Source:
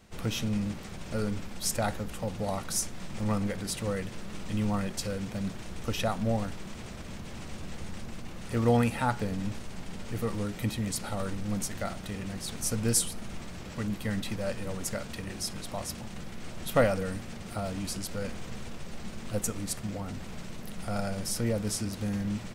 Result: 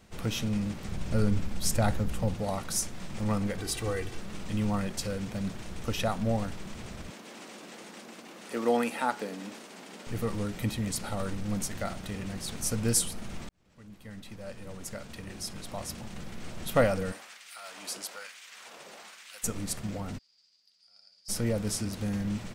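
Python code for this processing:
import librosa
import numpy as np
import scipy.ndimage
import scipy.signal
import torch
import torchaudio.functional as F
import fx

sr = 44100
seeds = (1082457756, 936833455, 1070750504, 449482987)

y = fx.low_shelf(x, sr, hz=190.0, db=10.0, at=(0.83, 2.34))
y = fx.comb(y, sr, ms=2.6, depth=0.65, at=(3.58, 4.19))
y = fx.highpass(y, sr, hz=250.0, slope=24, at=(7.1, 10.07))
y = fx.filter_lfo_highpass(y, sr, shape='sine', hz=1.1, low_hz=490.0, high_hz=2100.0, q=1.0, at=(17.11, 19.43), fade=0.02)
y = fx.bandpass_q(y, sr, hz=4800.0, q=19.0, at=(20.17, 21.28), fade=0.02)
y = fx.edit(y, sr, fx.fade_in_span(start_s=13.49, length_s=2.85), tone=tone)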